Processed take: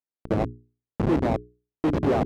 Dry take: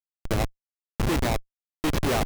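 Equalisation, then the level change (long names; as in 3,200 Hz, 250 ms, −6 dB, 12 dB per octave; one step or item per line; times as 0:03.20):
resonant band-pass 290 Hz, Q 0.57
mains-hum notches 60/120/180/240/300/360/420 Hz
+5.5 dB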